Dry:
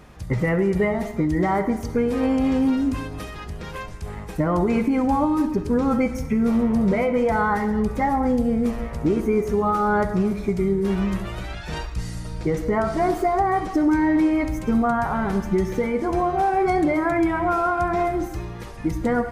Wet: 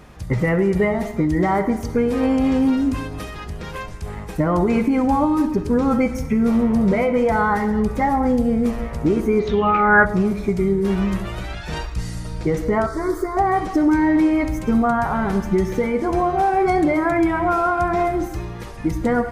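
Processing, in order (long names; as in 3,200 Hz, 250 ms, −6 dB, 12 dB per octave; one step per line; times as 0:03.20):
0:09.39–0:10.05: low-pass with resonance 4,400 Hz → 1,500 Hz, resonance Q 11
0:12.86–0:13.37: phaser with its sweep stopped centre 740 Hz, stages 6
level +2.5 dB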